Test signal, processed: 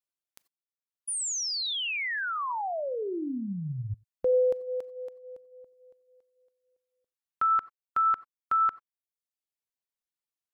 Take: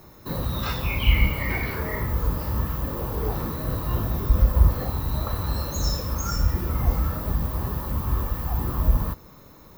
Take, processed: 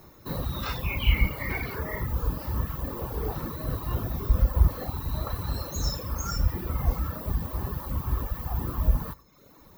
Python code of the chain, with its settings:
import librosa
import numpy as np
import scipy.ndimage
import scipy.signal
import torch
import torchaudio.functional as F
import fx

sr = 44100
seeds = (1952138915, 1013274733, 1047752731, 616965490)

y = fx.rev_gated(x, sr, seeds[0], gate_ms=110, shape='rising', drr_db=10.0)
y = fx.dereverb_blind(y, sr, rt60_s=0.79)
y = y * 10.0 ** (-2.5 / 20.0)